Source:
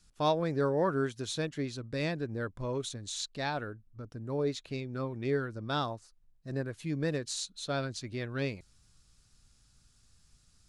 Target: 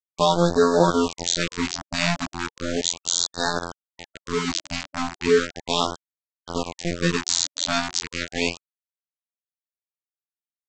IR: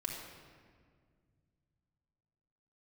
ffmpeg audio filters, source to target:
-af "crystalizer=i=2:c=0,afftfilt=real='hypot(re,im)*cos(PI*b)':imag='0':win_size=2048:overlap=0.75,aresample=16000,aeval=exprs='val(0)*gte(abs(val(0)),0.0168)':c=same,aresample=44100,alimiter=level_in=16.5dB:limit=-1dB:release=50:level=0:latency=1,afftfilt=real='re*(1-between(b*sr/1024,400*pow(2600/400,0.5+0.5*sin(2*PI*0.36*pts/sr))/1.41,400*pow(2600/400,0.5+0.5*sin(2*PI*0.36*pts/sr))*1.41))':imag='im*(1-between(b*sr/1024,400*pow(2600/400,0.5+0.5*sin(2*PI*0.36*pts/sr))/1.41,400*pow(2600/400,0.5+0.5*sin(2*PI*0.36*pts/sr))*1.41))':win_size=1024:overlap=0.75,volume=-1.5dB"

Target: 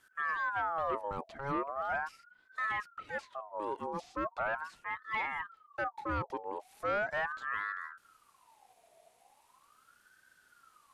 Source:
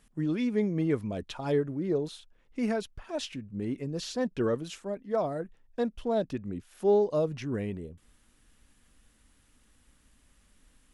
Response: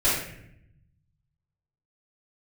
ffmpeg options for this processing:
-filter_complex "[0:a]acrossover=split=120|1400[a][b][c];[b]asoftclip=type=tanh:threshold=-27dB[d];[c]acompressor=threshold=-56dB:ratio=6[e];[a][d][e]amix=inputs=3:normalize=0,aeval=exprs='val(0)*sin(2*PI*1100*n/s+1100*0.4/0.39*sin(2*PI*0.39*n/s))':c=same"

